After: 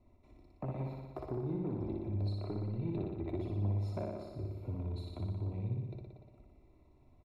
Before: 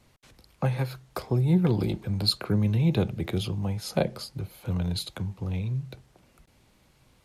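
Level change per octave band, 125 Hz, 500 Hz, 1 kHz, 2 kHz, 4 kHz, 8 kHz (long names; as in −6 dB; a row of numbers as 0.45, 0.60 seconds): −10.0 dB, −9.5 dB, −11.0 dB, below −20 dB, −27.0 dB, below −25 dB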